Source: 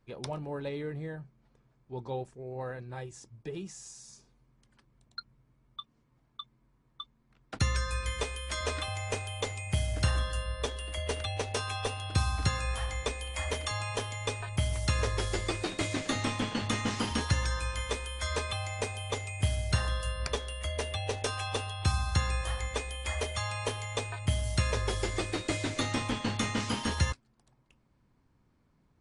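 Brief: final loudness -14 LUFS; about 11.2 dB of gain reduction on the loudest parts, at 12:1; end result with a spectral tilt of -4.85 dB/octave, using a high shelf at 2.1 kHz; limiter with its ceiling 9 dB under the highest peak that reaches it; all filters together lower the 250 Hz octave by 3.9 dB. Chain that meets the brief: peaking EQ 250 Hz -5 dB; treble shelf 2.1 kHz -7 dB; compression 12:1, threshold -34 dBFS; trim +27.5 dB; peak limiter -3.5 dBFS

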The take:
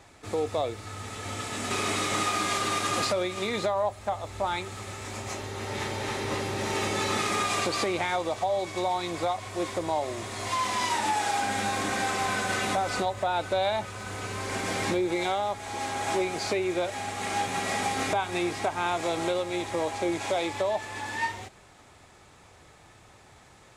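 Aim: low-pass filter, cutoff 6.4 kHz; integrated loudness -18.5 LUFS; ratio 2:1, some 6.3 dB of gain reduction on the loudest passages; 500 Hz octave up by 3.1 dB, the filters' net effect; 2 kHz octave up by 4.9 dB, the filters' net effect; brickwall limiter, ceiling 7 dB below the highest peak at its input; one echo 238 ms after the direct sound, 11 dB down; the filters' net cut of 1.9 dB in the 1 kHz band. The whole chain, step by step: low-pass 6.4 kHz; peaking EQ 500 Hz +5.5 dB; peaking EQ 1 kHz -6.5 dB; peaking EQ 2 kHz +7.5 dB; compression 2:1, threshold -32 dBFS; peak limiter -25.5 dBFS; delay 238 ms -11 dB; trim +15.5 dB

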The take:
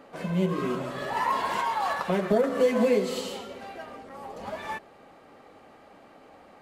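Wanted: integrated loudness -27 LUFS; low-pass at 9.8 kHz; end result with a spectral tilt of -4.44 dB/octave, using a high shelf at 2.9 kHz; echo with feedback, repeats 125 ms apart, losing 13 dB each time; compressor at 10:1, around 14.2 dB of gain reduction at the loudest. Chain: low-pass 9.8 kHz; treble shelf 2.9 kHz +6 dB; compression 10:1, threshold -32 dBFS; feedback delay 125 ms, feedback 22%, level -13 dB; trim +9.5 dB

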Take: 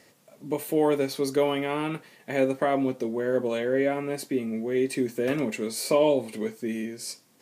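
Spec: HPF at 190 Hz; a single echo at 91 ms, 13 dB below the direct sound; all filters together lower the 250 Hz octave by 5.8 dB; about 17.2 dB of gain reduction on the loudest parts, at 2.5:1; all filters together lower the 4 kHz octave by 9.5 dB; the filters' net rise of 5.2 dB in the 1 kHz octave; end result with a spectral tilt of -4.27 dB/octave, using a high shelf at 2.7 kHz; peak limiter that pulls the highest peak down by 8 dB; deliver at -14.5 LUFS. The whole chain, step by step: high-pass 190 Hz; peaking EQ 250 Hz -6.5 dB; peaking EQ 1 kHz +8.5 dB; treble shelf 2.7 kHz -7 dB; peaking EQ 4 kHz -7.5 dB; compression 2.5:1, threshold -43 dBFS; peak limiter -32.5 dBFS; delay 91 ms -13 dB; trim +28.5 dB

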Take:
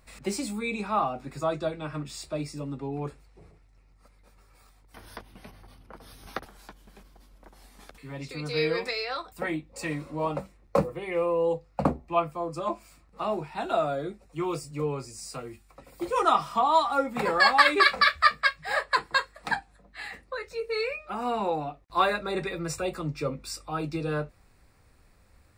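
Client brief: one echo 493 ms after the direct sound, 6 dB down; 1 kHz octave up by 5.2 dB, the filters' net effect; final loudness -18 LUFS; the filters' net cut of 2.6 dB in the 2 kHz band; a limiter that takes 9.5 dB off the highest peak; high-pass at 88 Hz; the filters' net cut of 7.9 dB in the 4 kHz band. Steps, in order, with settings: high-pass 88 Hz; peaking EQ 1 kHz +8 dB; peaking EQ 2 kHz -4.5 dB; peaking EQ 4 kHz -8.5 dB; peak limiter -12.5 dBFS; delay 493 ms -6 dB; trim +9 dB

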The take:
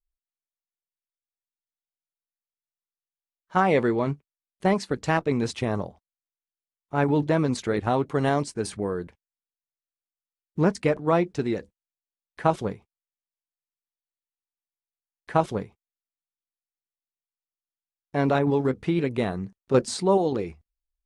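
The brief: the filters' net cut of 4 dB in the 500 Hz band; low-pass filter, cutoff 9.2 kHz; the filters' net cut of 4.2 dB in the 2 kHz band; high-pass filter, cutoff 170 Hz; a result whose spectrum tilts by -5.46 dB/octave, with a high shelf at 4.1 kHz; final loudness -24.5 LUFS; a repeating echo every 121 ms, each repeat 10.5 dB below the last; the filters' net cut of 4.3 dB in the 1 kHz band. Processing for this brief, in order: high-pass 170 Hz; low-pass 9.2 kHz; peaking EQ 500 Hz -4 dB; peaking EQ 1 kHz -3.5 dB; peaking EQ 2 kHz -5 dB; treble shelf 4.1 kHz +5.5 dB; feedback delay 121 ms, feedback 30%, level -10.5 dB; trim +4 dB

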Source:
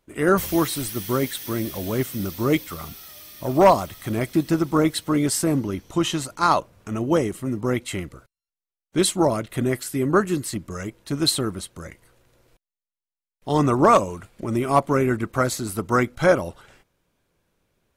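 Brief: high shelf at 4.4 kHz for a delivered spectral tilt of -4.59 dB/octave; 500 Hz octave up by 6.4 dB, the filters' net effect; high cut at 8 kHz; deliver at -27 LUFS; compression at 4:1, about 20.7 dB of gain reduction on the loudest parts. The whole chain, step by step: low-pass 8 kHz; peaking EQ 500 Hz +8 dB; treble shelf 4.4 kHz +9 dB; compression 4:1, threshold -31 dBFS; trim +6 dB

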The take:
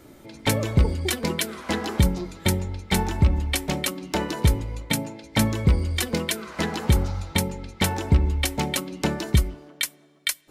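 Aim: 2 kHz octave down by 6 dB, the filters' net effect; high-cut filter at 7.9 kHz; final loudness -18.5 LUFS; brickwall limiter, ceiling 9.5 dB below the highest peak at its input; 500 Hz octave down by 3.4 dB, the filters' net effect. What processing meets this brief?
low-pass 7.9 kHz; peaking EQ 500 Hz -4 dB; peaking EQ 2 kHz -7 dB; trim +11.5 dB; peak limiter -6.5 dBFS

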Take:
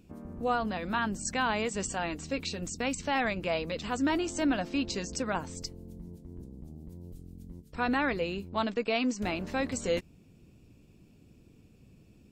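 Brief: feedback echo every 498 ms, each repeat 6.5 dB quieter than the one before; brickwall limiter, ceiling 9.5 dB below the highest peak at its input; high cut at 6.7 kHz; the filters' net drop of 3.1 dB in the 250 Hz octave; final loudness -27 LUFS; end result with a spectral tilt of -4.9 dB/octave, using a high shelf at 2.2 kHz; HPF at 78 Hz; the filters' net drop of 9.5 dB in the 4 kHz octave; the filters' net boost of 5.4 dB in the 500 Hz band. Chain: high-pass 78 Hz; low-pass 6.7 kHz; peaking EQ 250 Hz -6 dB; peaking EQ 500 Hz +8 dB; treble shelf 2.2 kHz -5 dB; peaking EQ 4 kHz -8.5 dB; peak limiter -23.5 dBFS; feedback delay 498 ms, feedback 47%, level -6.5 dB; trim +6.5 dB

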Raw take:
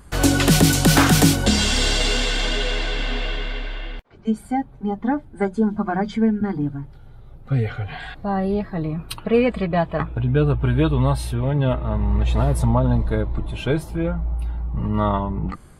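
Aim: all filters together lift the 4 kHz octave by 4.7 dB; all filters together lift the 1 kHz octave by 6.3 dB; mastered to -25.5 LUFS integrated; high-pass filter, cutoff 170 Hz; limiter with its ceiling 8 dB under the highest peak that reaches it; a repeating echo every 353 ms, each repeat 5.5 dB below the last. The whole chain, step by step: high-pass 170 Hz; peaking EQ 1 kHz +8 dB; peaking EQ 4 kHz +5.5 dB; peak limiter -8 dBFS; feedback delay 353 ms, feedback 53%, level -5.5 dB; trim -5.5 dB

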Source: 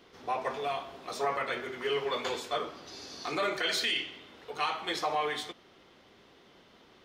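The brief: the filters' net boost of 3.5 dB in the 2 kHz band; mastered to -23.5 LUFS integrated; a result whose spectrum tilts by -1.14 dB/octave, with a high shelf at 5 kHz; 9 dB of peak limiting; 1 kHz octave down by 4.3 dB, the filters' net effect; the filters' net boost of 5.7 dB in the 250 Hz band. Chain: peaking EQ 250 Hz +8.5 dB; peaking EQ 1 kHz -8.5 dB; peaking EQ 2 kHz +7.5 dB; treble shelf 5 kHz -7 dB; trim +12.5 dB; peak limiter -13.5 dBFS

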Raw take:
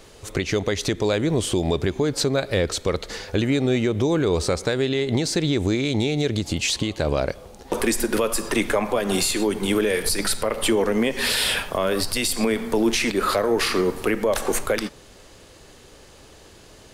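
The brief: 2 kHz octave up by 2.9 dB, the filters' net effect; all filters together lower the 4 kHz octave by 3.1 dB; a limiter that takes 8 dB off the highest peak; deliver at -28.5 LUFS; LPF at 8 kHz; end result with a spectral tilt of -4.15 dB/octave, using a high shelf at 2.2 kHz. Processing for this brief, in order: low-pass 8 kHz; peaking EQ 2 kHz +3.5 dB; treble shelf 2.2 kHz +4.5 dB; peaking EQ 4 kHz -9 dB; trim -1.5 dB; peak limiter -18.5 dBFS

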